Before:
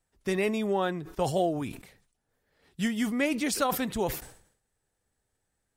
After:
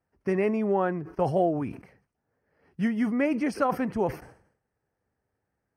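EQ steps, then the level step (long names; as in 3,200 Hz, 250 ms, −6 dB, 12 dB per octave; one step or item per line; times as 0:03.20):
moving average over 12 samples
high-pass filter 74 Hz
+3.0 dB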